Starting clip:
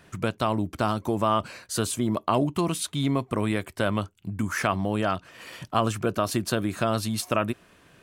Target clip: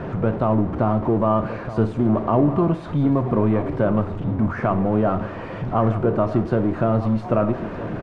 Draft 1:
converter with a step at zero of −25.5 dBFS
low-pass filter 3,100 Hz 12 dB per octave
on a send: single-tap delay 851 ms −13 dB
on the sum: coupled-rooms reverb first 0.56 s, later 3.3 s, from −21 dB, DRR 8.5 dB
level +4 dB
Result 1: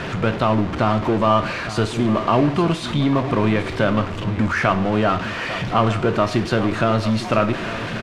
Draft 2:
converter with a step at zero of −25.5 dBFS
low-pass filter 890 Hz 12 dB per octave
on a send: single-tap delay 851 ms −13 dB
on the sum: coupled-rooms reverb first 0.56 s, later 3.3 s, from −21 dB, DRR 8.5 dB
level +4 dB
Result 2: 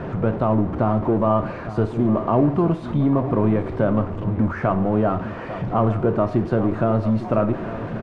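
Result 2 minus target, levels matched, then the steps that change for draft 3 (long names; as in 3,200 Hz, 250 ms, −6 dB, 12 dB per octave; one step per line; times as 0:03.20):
echo 410 ms early
change: single-tap delay 1,261 ms −13 dB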